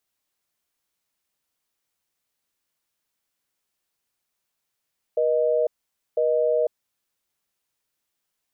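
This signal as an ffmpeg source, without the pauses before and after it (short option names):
-f lavfi -i "aevalsrc='0.0891*(sin(2*PI*480*t)+sin(2*PI*620*t))*clip(min(mod(t,1),0.5-mod(t,1))/0.005,0,1)':d=1.83:s=44100"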